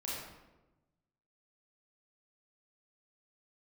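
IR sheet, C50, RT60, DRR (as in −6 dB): −1.5 dB, 1.1 s, −7.0 dB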